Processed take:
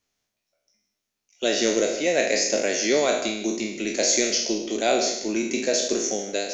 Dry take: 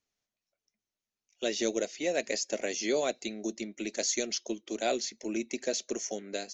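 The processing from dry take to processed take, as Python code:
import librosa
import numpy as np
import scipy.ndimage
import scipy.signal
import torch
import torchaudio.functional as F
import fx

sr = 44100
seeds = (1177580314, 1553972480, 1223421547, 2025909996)

p1 = fx.spec_trails(x, sr, decay_s=0.71)
p2 = p1 + fx.echo_single(p1, sr, ms=153, db=-13.5, dry=0)
y = p2 * 10.0 ** (6.5 / 20.0)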